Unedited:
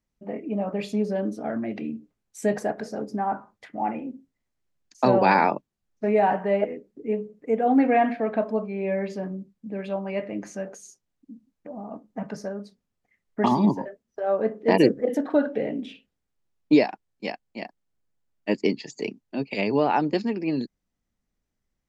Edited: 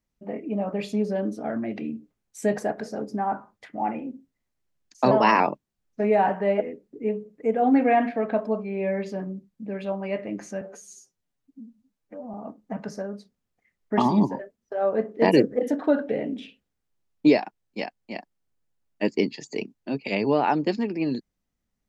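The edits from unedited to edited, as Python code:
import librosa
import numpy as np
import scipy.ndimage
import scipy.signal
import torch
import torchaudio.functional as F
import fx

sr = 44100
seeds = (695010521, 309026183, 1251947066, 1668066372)

y = fx.edit(x, sr, fx.speed_span(start_s=5.11, length_s=0.33, speed=1.13),
    fx.stretch_span(start_s=10.65, length_s=1.15, factor=1.5), tone=tone)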